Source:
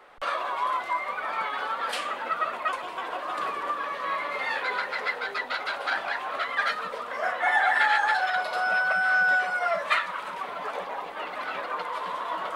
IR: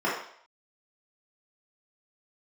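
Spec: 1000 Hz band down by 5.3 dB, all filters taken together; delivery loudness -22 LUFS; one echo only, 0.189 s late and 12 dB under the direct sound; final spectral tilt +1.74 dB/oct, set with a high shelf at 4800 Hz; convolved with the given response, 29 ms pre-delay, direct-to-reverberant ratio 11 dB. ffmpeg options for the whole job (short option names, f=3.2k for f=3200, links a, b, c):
-filter_complex "[0:a]equalizer=f=1k:t=o:g=-7,highshelf=f=4.8k:g=-5,aecho=1:1:189:0.251,asplit=2[a][b];[1:a]atrim=start_sample=2205,adelay=29[c];[b][c]afir=irnorm=-1:irlink=0,volume=-25dB[d];[a][d]amix=inputs=2:normalize=0,volume=8dB"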